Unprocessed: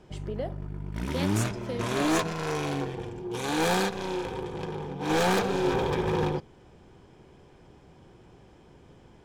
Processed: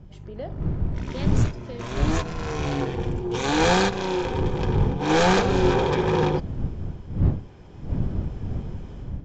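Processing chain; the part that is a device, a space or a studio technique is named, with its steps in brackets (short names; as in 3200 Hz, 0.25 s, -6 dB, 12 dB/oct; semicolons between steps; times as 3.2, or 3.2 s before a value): smartphone video outdoors (wind noise 120 Hz -28 dBFS; AGC gain up to 16 dB; gain -7.5 dB; AAC 64 kbps 16000 Hz)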